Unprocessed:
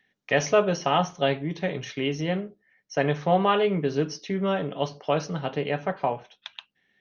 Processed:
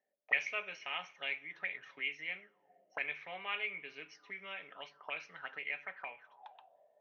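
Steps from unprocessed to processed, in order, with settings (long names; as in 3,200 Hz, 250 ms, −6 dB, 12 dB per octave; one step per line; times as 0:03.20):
coupled-rooms reverb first 0.22 s, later 3 s, from −18 dB, DRR 17.5 dB
envelope filter 590–2,300 Hz, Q 11, up, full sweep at −23.5 dBFS
level +5.5 dB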